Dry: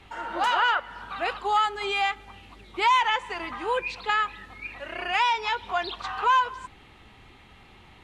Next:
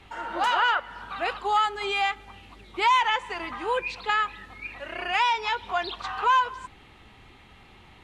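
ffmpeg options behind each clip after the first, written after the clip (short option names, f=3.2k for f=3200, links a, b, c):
-af anull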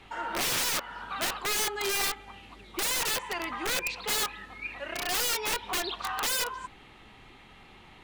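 -af "aeval=exprs='(mod(15*val(0)+1,2)-1)/15':c=same,equalizer=f=75:w=1.5:g=-7.5"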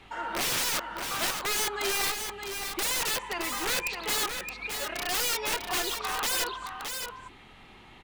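-af "aecho=1:1:618:0.473"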